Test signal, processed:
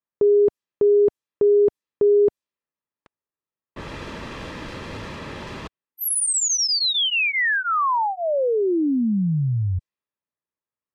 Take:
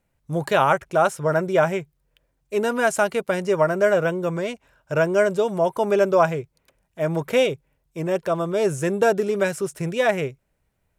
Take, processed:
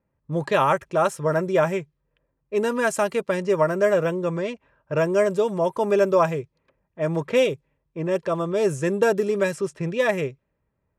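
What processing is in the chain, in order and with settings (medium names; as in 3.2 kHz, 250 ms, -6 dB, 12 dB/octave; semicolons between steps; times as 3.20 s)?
level-controlled noise filter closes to 1.5 kHz, open at -17 dBFS; comb of notches 730 Hz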